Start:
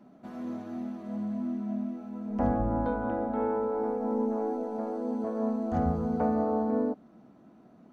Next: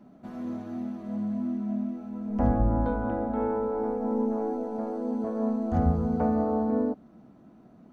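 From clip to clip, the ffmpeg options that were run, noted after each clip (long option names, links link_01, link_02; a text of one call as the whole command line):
ffmpeg -i in.wav -af "lowshelf=frequency=130:gain=10" out.wav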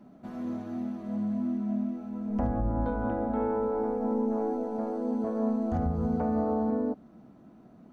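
ffmpeg -i in.wav -af "alimiter=limit=-19.5dB:level=0:latency=1:release=160" out.wav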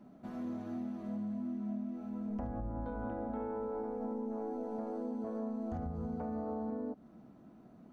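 ffmpeg -i in.wav -af "acompressor=threshold=-32dB:ratio=6,volume=-3.5dB" out.wav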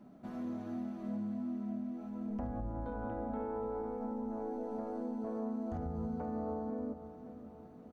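ffmpeg -i in.wav -af "aecho=1:1:533|1066|1599|2132|2665|3198:0.224|0.128|0.0727|0.0415|0.0236|0.0135" out.wav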